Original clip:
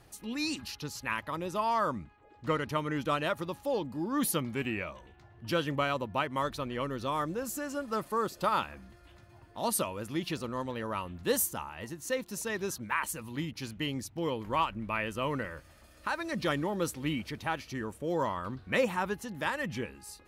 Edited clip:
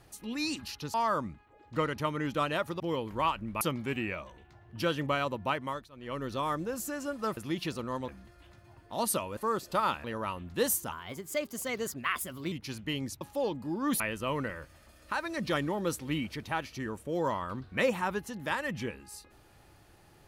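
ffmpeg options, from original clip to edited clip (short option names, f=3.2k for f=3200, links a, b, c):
-filter_complex "[0:a]asplit=14[a][b][c][d][e][f][g][h][i][j][k][l][m][n];[a]atrim=end=0.942[o];[b]atrim=start=1.648:end=3.512[p];[c]atrim=start=14.138:end=14.952[q];[d]atrim=start=4.298:end=6.59,asetpts=PTS-STARTPTS,afade=t=out:st=1.962:d=0.33:silence=0.0794328[r];[e]atrim=start=6.59:end=6.6,asetpts=PTS-STARTPTS,volume=-22dB[s];[f]atrim=start=6.6:end=8.062,asetpts=PTS-STARTPTS,afade=t=in:d=0.33:silence=0.0794328[t];[g]atrim=start=10.018:end=10.732[u];[h]atrim=start=8.728:end=10.022[v];[i]atrim=start=8.058:end=8.732[w];[j]atrim=start=10.728:end=11.614[x];[k]atrim=start=11.61:end=13.45,asetpts=PTS-STARTPTS,asetrate=50715,aresample=44100[y];[l]atrim=start=13.446:end=14.142[z];[m]atrim=start=3.508:end=4.302[aa];[n]atrim=start=14.948[ab];[o][p]acrossfade=d=0.004:c1=hsin:c2=hsin[ac];[ac][q]acrossfade=d=0.004:c1=hsin:c2=hsin[ad];[r][s][t]concat=n=3:v=0:a=1[ae];[ad][ae]acrossfade=d=0.004:c1=hsin:c2=hsin[af];[af][u]acrossfade=d=0.004:c1=hsin:c2=hsin[ag];[ag][v]acrossfade=d=0.004:c1=hsin:c2=hsin[ah];[ah][w]acrossfade=d=0.004:c1=hsin:c2=hsin[ai];[ai][x]acrossfade=d=0.004:c1=hsin:c2=hsin[aj];[aj][y]acrossfade=d=0.004:c1=hsin:c2=hsin[ak];[ak][z]acrossfade=d=0.004:c1=hsin:c2=hsin[al];[al][aa]acrossfade=d=0.004:c1=hsin:c2=hsin[am];[am][ab]acrossfade=d=0.004:c1=hsin:c2=hsin"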